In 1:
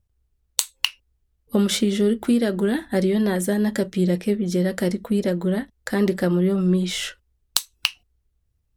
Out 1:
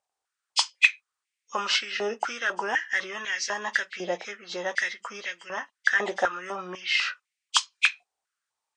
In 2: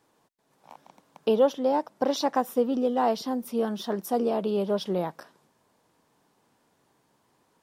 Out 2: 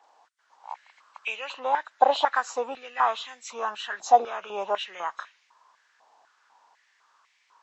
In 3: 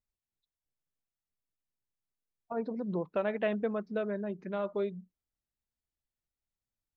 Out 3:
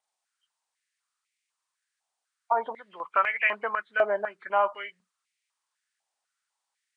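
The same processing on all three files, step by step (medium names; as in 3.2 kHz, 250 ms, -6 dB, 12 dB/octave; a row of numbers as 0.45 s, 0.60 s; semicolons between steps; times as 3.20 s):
knee-point frequency compression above 2 kHz 1.5:1; step-sequenced high-pass 4 Hz 770–2200 Hz; normalise loudness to -27 LUFS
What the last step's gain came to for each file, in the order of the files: 0.0 dB, +2.5 dB, +9.5 dB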